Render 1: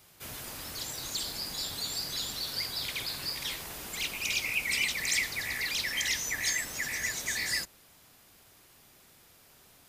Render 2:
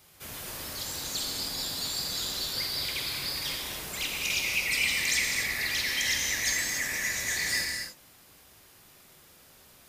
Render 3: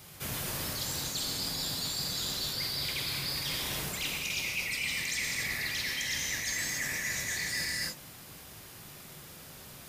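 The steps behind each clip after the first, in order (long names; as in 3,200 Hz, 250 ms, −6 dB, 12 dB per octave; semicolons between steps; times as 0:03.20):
reverb whose tail is shaped and stops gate 310 ms flat, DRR 0 dB
parametric band 140 Hz +7.5 dB 1.1 octaves; reversed playback; downward compressor 6 to 1, threshold −38 dBFS, peak gain reduction 14 dB; reversed playback; level +6.5 dB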